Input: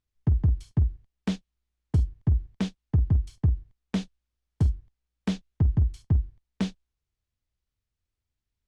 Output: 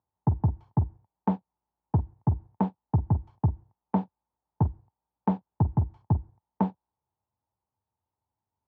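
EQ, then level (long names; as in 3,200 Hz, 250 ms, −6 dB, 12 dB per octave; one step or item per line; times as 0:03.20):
high-pass filter 91 Hz 24 dB per octave
low-pass with resonance 890 Hz, resonance Q 8.3
+1.0 dB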